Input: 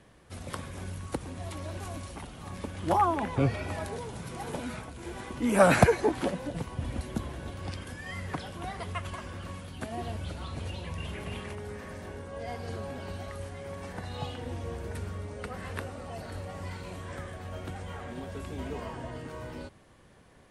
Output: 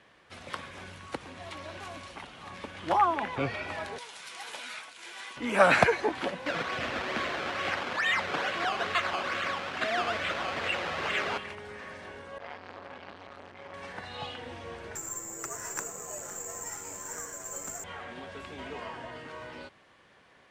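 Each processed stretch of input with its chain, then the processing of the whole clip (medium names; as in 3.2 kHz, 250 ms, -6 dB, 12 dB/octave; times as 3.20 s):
3.98–5.37 s: high-pass 1.5 kHz 6 dB/octave + treble shelf 3.7 kHz +9.5 dB
6.46–11.38 s: Butterworth band-stop 920 Hz, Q 3 + decimation with a swept rate 16× 2.3 Hz + overdrive pedal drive 23 dB, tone 3.5 kHz, clips at -19.5 dBFS
12.38–13.74 s: low-pass 5.8 kHz + transformer saturation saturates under 1.1 kHz
14.95–17.84 s: low-pass 1.7 kHz + frequency shift -83 Hz + careless resampling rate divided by 6×, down none, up zero stuff
whole clip: low-pass 2.8 kHz 12 dB/octave; tilt EQ +4 dB/octave; trim +1.5 dB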